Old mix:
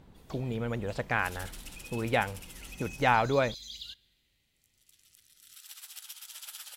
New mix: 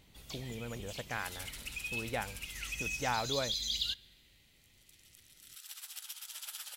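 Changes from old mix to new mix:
speech -9.5 dB; first sound +9.0 dB

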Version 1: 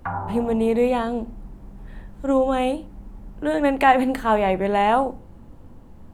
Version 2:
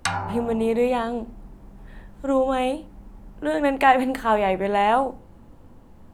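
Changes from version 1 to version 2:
speech: add bass shelf 320 Hz -4.5 dB; background: remove low-pass 1.3 kHz 24 dB/octave

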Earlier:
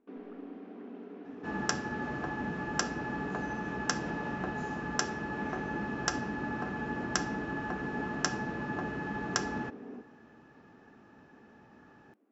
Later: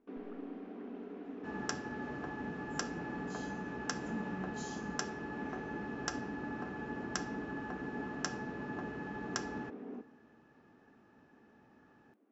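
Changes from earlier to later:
speech +11.0 dB; second sound -7.0 dB

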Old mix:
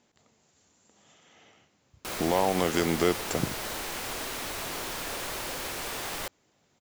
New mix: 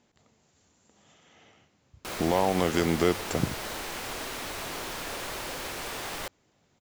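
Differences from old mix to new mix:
speech: add bass shelf 130 Hz +6.5 dB; master: add treble shelf 6.9 kHz -4.5 dB

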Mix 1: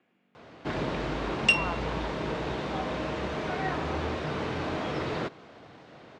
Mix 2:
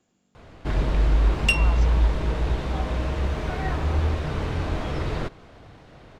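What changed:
speech: remove resonant low-pass 2.3 kHz, resonance Q 2.2; master: remove band-pass 180–6400 Hz

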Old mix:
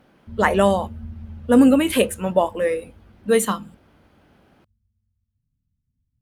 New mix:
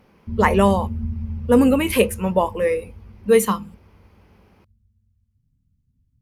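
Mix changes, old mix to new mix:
speech: add rippled EQ curve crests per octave 0.83, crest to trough 7 dB; background +8.5 dB

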